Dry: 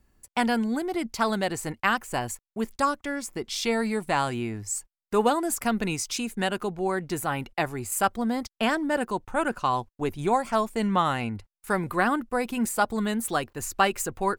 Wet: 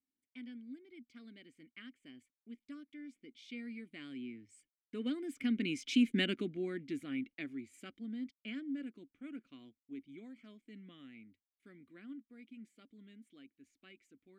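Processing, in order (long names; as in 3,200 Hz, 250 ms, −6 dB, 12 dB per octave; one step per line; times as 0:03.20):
source passing by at 0:06.15, 13 m/s, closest 3.7 metres
formant filter i
level +11 dB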